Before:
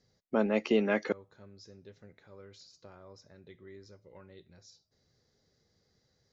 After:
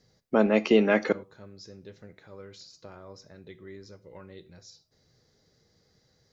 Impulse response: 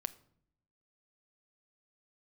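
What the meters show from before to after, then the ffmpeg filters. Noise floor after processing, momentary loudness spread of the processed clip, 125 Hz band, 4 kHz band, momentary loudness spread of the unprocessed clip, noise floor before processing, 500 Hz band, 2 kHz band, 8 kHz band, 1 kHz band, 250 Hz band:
-69 dBFS, 9 LU, +6.0 dB, +6.5 dB, 9 LU, -75 dBFS, +6.5 dB, +6.5 dB, no reading, +6.5 dB, +6.0 dB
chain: -filter_complex "[0:a]asplit=2[s0][s1];[1:a]atrim=start_sample=2205,afade=t=out:st=0.16:d=0.01,atrim=end_sample=7497[s2];[s1][s2]afir=irnorm=-1:irlink=0,volume=3.35[s3];[s0][s3]amix=inputs=2:normalize=0,volume=0.531"

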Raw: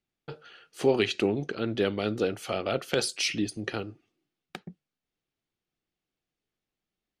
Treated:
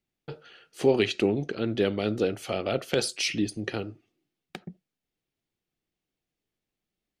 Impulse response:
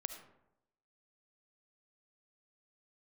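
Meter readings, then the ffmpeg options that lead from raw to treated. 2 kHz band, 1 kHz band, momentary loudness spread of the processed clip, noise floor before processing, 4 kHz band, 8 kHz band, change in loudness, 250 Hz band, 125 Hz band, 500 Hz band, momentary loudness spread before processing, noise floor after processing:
0.0 dB, -1.0 dB, 20 LU, under -85 dBFS, 0.0 dB, 0.0 dB, +1.0 dB, +2.0 dB, +2.0 dB, +1.5 dB, 20 LU, under -85 dBFS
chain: -filter_complex "[0:a]asplit=2[s0][s1];[s1]lowpass=f=1800:w=0.5412,lowpass=f=1800:w=1.3066[s2];[1:a]atrim=start_sample=2205,atrim=end_sample=3969,lowpass=2000[s3];[s2][s3]afir=irnorm=-1:irlink=0,volume=0.398[s4];[s0][s4]amix=inputs=2:normalize=0"

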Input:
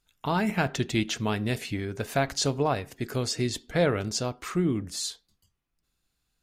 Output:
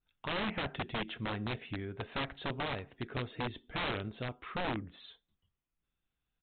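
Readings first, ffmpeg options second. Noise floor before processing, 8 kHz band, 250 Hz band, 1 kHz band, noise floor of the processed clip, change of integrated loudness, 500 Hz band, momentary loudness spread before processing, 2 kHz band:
-79 dBFS, under -40 dB, -11.5 dB, -7.5 dB, under -85 dBFS, -9.5 dB, -12.0 dB, 7 LU, -5.5 dB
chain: -af "aresample=8000,aeval=exprs='(mod(11.2*val(0)+1,2)-1)/11.2':c=same,aresample=44100,adynamicequalizer=threshold=0.00708:dfrequency=2800:dqfactor=0.7:tfrequency=2800:tqfactor=0.7:attack=5:release=100:ratio=0.375:range=2.5:mode=cutabove:tftype=highshelf,volume=0.398"

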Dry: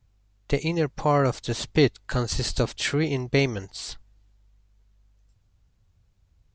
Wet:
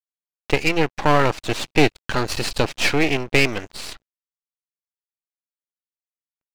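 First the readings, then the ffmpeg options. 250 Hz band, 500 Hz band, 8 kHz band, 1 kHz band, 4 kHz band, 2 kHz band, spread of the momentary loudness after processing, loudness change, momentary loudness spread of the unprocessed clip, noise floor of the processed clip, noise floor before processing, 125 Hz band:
+3.0 dB, +3.0 dB, +3.0 dB, +7.0 dB, +5.5 dB, +9.5 dB, 10 LU, +4.5 dB, 12 LU, under -85 dBFS, -65 dBFS, -0.5 dB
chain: -filter_complex "[0:a]equalizer=f=315:t=o:w=0.33:g=5,equalizer=f=2500:t=o:w=0.33:g=9,equalizer=f=6300:t=o:w=0.33:g=-3,aeval=exprs='sgn(val(0))*max(abs(val(0))-0.00299,0)':c=same,asplit=2[s0][s1];[s1]highpass=f=720:p=1,volume=3.98,asoftclip=type=tanh:threshold=0.473[s2];[s0][s2]amix=inputs=2:normalize=0,lowpass=f=2700:p=1,volume=0.501,aeval=exprs='max(val(0),0)':c=same,volume=2"

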